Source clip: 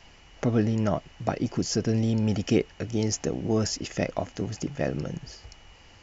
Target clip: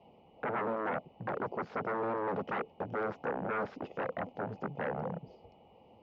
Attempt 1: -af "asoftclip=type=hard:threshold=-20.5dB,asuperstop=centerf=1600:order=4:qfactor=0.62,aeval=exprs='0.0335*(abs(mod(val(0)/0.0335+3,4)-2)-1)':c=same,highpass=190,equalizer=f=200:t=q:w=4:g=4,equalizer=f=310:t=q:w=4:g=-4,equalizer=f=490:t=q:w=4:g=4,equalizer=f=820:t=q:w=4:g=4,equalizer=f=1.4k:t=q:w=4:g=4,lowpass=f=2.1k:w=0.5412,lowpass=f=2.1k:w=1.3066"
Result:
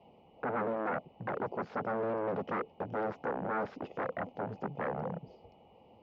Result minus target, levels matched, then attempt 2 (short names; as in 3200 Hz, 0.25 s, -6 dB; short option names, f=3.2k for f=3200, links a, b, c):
hard clip: distortion +38 dB
-af "asoftclip=type=hard:threshold=-9dB,asuperstop=centerf=1600:order=4:qfactor=0.62,aeval=exprs='0.0335*(abs(mod(val(0)/0.0335+3,4)-2)-1)':c=same,highpass=190,equalizer=f=200:t=q:w=4:g=4,equalizer=f=310:t=q:w=4:g=-4,equalizer=f=490:t=q:w=4:g=4,equalizer=f=820:t=q:w=4:g=4,equalizer=f=1.4k:t=q:w=4:g=4,lowpass=f=2.1k:w=0.5412,lowpass=f=2.1k:w=1.3066"